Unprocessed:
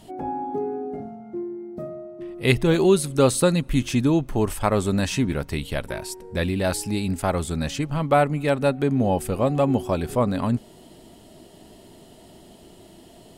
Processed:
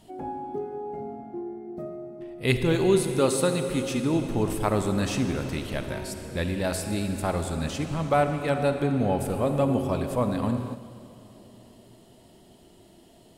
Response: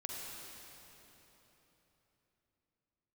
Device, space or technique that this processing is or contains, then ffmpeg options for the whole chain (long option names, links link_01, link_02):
keyed gated reverb: -filter_complex "[0:a]asplit=3[link_01][link_02][link_03];[1:a]atrim=start_sample=2205[link_04];[link_02][link_04]afir=irnorm=-1:irlink=0[link_05];[link_03]apad=whole_len=589781[link_06];[link_05][link_06]sidechaingate=range=-8dB:threshold=-42dB:ratio=16:detection=peak,volume=0dB[link_07];[link_01][link_07]amix=inputs=2:normalize=0,asettb=1/sr,asplit=3[link_08][link_09][link_10];[link_08]atrim=end=3.194[link_11];[link_09]atrim=start=3.19:end=4.14,asetpts=PTS-STARTPTS,afade=type=in:duration=0.004:curve=qsin,afade=type=out:start_time=0.946:duration=0.004:curve=qsin,highpass=frequency=180:poles=1[link_12];[link_10]atrim=start=4.136[link_13];[link_11][link_12]acrossfade=duration=0.004:curve1=hsin:curve2=qsin[link_14];[link_14][link_13]acrossfade=duration=0.004:curve1=qsin:curve2=hsin,volume=-8.5dB"